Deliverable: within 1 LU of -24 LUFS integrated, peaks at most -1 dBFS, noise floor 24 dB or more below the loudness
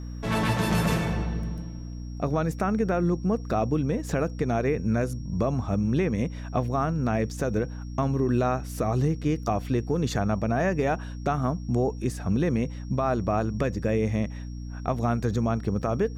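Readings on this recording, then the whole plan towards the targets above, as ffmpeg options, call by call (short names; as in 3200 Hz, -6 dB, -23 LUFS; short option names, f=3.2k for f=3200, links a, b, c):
hum 60 Hz; harmonics up to 300 Hz; hum level -33 dBFS; steady tone 5600 Hz; tone level -55 dBFS; loudness -27.0 LUFS; peak -13.0 dBFS; loudness target -24.0 LUFS
-> -af "bandreject=f=60:t=h:w=6,bandreject=f=120:t=h:w=6,bandreject=f=180:t=h:w=6,bandreject=f=240:t=h:w=6,bandreject=f=300:t=h:w=6"
-af "bandreject=f=5.6k:w=30"
-af "volume=3dB"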